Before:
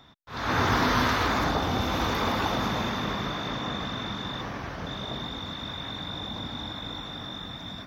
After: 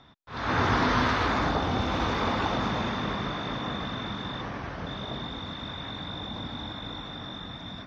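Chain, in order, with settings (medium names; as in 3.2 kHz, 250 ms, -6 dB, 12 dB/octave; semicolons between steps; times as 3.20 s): distance through air 100 m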